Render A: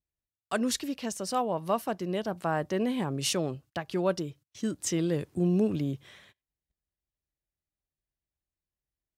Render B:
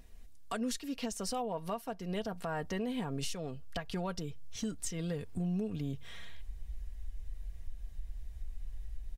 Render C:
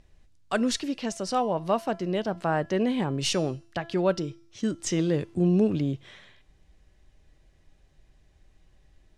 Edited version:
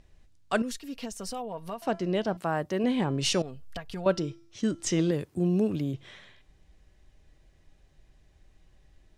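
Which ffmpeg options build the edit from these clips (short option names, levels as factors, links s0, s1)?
-filter_complex "[1:a]asplit=2[s0][s1];[0:a]asplit=2[s2][s3];[2:a]asplit=5[s4][s5][s6][s7][s8];[s4]atrim=end=0.622[s9];[s0]atrim=start=0.618:end=1.822[s10];[s5]atrim=start=1.818:end=2.372[s11];[s2]atrim=start=2.368:end=2.842[s12];[s6]atrim=start=2.838:end=3.422[s13];[s1]atrim=start=3.418:end=4.062[s14];[s7]atrim=start=4.058:end=5.112[s15];[s3]atrim=start=5.108:end=5.942[s16];[s8]atrim=start=5.938[s17];[s9][s10]acrossfade=d=0.004:c1=hsin:c2=hsin[s18];[s18][s11]acrossfade=d=0.004:c1=hsin:c2=hsin[s19];[s19][s12]acrossfade=d=0.004:c1=hsin:c2=hsin[s20];[s20][s13]acrossfade=d=0.004:c1=hsin:c2=hsin[s21];[s21][s14]acrossfade=d=0.004:c1=hsin:c2=hsin[s22];[s22][s15]acrossfade=d=0.004:c1=hsin:c2=hsin[s23];[s23][s16]acrossfade=d=0.004:c1=hsin:c2=hsin[s24];[s24][s17]acrossfade=d=0.004:c1=hsin:c2=hsin"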